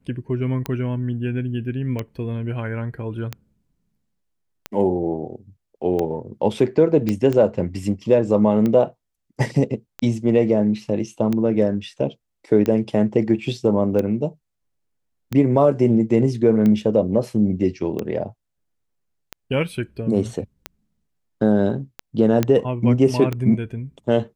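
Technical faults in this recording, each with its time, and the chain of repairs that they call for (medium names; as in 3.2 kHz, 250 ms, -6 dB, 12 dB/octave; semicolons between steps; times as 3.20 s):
tick 45 rpm -12 dBFS
7.09 s: pop -10 dBFS
22.43 s: pop -6 dBFS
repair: de-click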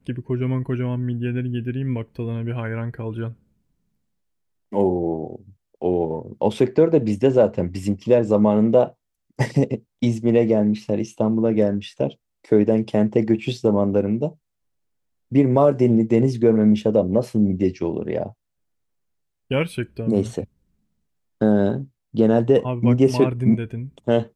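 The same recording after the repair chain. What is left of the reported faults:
nothing left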